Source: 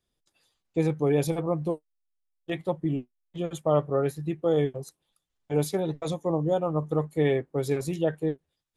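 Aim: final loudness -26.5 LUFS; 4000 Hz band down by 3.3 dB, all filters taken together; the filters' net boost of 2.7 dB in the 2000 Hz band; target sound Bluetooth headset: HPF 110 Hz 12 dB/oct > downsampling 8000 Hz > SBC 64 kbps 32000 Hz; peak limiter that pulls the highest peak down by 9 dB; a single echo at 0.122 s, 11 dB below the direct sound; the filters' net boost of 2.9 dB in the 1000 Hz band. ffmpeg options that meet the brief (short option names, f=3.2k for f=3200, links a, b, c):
-af "equalizer=f=1k:t=o:g=3.5,equalizer=f=2k:t=o:g=3.5,equalizer=f=4k:t=o:g=-5.5,alimiter=limit=-17.5dB:level=0:latency=1,highpass=110,aecho=1:1:122:0.282,aresample=8000,aresample=44100,volume=3.5dB" -ar 32000 -c:a sbc -b:a 64k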